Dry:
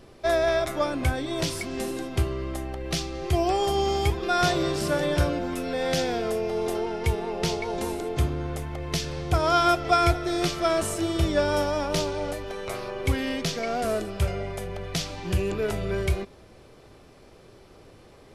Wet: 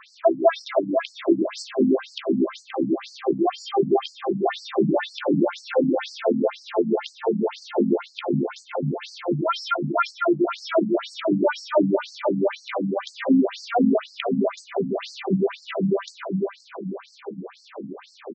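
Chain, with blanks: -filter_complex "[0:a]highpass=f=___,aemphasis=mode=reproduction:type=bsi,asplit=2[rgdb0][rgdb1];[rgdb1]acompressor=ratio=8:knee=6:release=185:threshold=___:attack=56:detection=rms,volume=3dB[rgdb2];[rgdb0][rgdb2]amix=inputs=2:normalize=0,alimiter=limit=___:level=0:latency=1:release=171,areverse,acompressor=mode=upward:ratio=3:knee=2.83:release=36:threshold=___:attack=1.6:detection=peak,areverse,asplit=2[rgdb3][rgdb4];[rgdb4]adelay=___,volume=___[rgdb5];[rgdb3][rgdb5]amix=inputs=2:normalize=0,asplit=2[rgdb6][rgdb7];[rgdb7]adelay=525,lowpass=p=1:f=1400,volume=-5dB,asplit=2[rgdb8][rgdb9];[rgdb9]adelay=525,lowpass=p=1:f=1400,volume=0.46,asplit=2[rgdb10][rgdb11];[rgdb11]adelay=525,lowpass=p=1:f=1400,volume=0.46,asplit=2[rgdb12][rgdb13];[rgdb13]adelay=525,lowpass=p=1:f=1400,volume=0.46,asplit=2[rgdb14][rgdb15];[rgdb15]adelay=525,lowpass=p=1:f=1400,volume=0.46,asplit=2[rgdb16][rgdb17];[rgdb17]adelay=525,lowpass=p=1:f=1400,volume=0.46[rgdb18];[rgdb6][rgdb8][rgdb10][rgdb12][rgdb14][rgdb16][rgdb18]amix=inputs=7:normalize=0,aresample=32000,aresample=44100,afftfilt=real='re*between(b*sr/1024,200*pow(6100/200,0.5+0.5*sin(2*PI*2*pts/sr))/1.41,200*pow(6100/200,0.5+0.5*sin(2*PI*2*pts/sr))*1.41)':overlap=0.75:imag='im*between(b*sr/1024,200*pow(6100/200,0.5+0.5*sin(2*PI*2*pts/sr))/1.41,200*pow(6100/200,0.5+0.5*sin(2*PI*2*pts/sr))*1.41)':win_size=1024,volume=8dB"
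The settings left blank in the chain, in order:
140, -36dB, -14.5dB, -34dB, 15, -10dB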